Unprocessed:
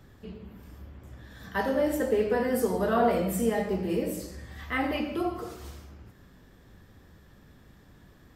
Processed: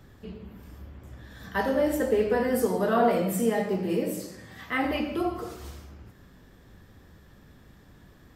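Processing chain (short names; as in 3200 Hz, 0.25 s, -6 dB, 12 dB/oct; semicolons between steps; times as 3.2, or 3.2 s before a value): 2.66–4.85 HPF 110 Hz 24 dB/oct; gain +1.5 dB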